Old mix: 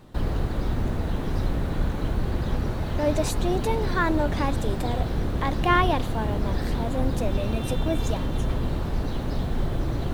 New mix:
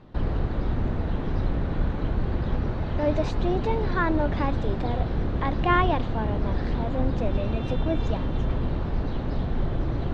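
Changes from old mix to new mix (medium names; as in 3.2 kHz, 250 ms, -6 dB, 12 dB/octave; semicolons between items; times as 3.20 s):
speech: add band-pass 120–8000 Hz; master: add distance through air 200 m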